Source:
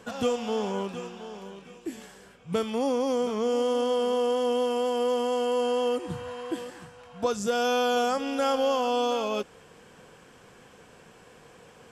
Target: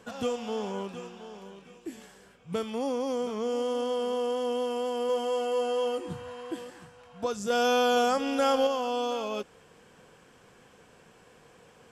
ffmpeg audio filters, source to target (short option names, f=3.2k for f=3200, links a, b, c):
-filter_complex "[0:a]asettb=1/sr,asplit=3[a][b][c];[a]atrim=end=5.074[d];[b]atrim=start=5.07:end=6.13,asetpts=PTS-STARTPTS,afade=t=in:d=0.004:c=qsin,afade=t=out:st=1.056:d=0.004:c=qsin,asplit=2[e][f];[f]adelay=22,volume=-5dB[g];[e][g]amix=inputs=2:normalize=0,atrim=end_sample=46746[h];[c]atrim=start=6.126[i];[d][h]acrossfade=d=0.004:c1=hsin:c2=qsin[j];[j][i]acrossfade=d=0.004:c1=qsin:c2=hsin,asettb=1/sr,asplit=3[k][l][m];[k]atrim=end=7.504[n];[l]atrim=start=7.5:end=8.67,asetpts=PTS-STARTPTS,afade=t=in:d=0.004:c=qsin,afade=t=out:st=1.166:d=0.004:c=qsin,acontrast=22[o];[m]atrim=start=8.666[p];[n][o]acrossfade=d=0.004:c1=hsin:c2=qsin[q];[q][p]acrossfade=d=0.004:c1=qsin:c2=hsin,volume=-4dB"